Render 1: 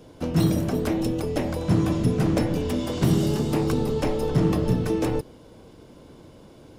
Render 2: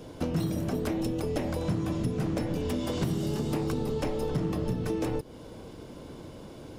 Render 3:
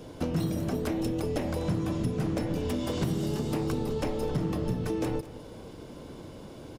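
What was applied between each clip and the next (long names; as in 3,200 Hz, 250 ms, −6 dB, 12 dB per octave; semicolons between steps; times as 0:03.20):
downward compressor 5 to 1, threshold −31 dBFS, peak gain reduction 14 dB; level +3.5 dB
single-tap delay 208 ms −16 dB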